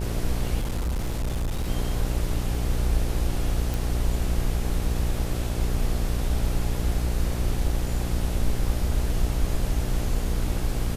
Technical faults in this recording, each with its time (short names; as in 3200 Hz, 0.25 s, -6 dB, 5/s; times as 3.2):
buzz 60 Hz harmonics 14 -28 dBFS
0.59–1.69 clipped -23 dBFS
3.74 pop